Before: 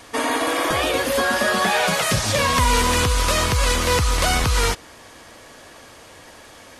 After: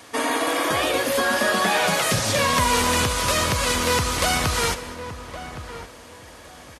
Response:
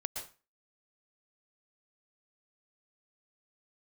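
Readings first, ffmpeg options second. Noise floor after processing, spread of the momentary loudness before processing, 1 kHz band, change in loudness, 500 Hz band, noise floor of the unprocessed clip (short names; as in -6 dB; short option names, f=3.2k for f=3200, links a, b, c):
-44 dBFS, 4 LU, -1.0 dB, -1.5 dB, -1.0 dB, -45 dBFS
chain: -filter_complex "[0:a]highpass=90,highshelf=f=11k:g=3,asplit=2[a][b];[b]adelay=1115,lowpass=f=1.4k:p=1,volume=-11dB,asplit=2[c][d];[d]adelay=1115,lowpass=f=1.4k:p=1,volume=0.25,asplit=2[e][f];[f]adelay=1115,lowpass=f=1.4k:p=1,volume=0.25[g];[a][c][e][g]amix=inputs=4:normalize=0,asplit=2[h][i];[1:a]atrim=start_sample=2205,adelay=72[j];[i][j]afir=irnorm=-1:irlink=0,volume=-13.5dB[k];[h][k]amix=inputs=2:normalize=0,volume=-1.5dB"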